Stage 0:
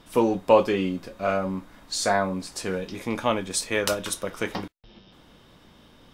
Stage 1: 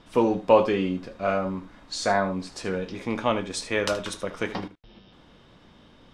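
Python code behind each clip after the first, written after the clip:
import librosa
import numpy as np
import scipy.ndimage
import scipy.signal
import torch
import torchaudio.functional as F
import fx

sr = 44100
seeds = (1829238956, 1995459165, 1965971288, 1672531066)

y = fx.air_absorb(x, sr, metres=73.0)
y = y + 10.0 ** (-14.0 / 20.0) * np.pad(y, (int(76 * sr / 1000.0), 0))[:len(y)]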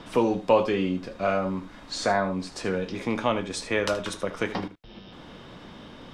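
y = fx.band_squash(x, sr, depth_pct=40)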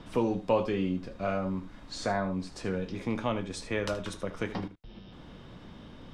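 y = fx.low_shelf(x, sr, hz=190.0, db=10.5)
y = F.gain(torch.from_numpy(y), -7.5).numpy()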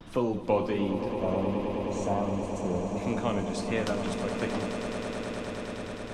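y = fx.spec_box(x, sr, start_s=1.14, length_s=1.83, low_hz=1200.0, high_hz=5800.0, gain_db=-16)
y = fx.vibrato(y, sr, rate_hz=1.4, depth_cents=90.0)
y = fx.echo_swell(y, sr, ms=105, loudest=8, wet_db=-11.5)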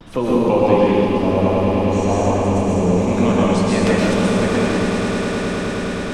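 y = fx.rev_plate(x, sr, seeds[0], rt60_s=2.1, hf_ratio=0.8, predelay_ms=105, drr_db=-6.0)
y = F.gain(torch.from_numpy(y), 6.5).numpy()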